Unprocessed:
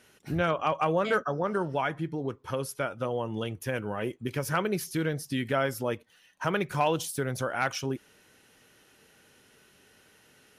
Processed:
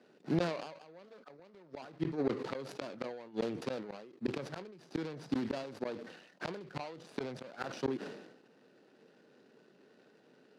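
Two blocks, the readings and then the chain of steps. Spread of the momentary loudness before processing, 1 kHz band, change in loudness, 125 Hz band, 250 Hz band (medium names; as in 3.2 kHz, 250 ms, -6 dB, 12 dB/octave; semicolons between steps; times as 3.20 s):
7 LU, -15.0 dB, -9.0 dB, -11.0 dB, -5.0 dB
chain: median filter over 41 samples; Bessel high-pass 260 Hz, order 8; peaking EQ 4.5 kHz +7 dB 0.62 oct; inverted gate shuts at -27 dBFS, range -31 dB; distance through air 61 m; decay stretcher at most 60 dB/s; trim +5.5 dB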